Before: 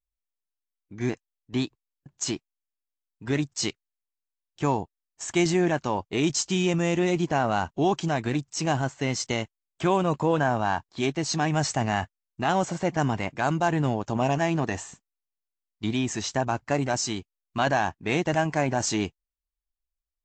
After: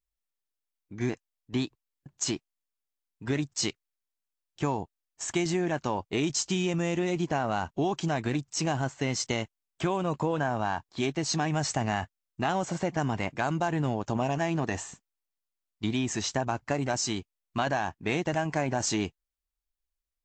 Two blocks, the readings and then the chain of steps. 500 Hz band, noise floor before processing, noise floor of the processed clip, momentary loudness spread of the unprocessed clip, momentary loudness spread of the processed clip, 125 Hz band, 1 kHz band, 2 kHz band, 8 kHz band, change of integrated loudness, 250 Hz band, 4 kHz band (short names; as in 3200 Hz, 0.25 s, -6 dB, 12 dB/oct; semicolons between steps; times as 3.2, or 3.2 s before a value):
-4.0 dB, under -85 dBFS, under -85 dBFS, 8 LU, 6 LU, -3.5 dB, -4.5 dB, -3.5 dB, -1.5 dB, -3.5 dB, -3.5 dB, -2.0 dB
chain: compressor, threshold -24 dBFS, peak gain reduction 7 dB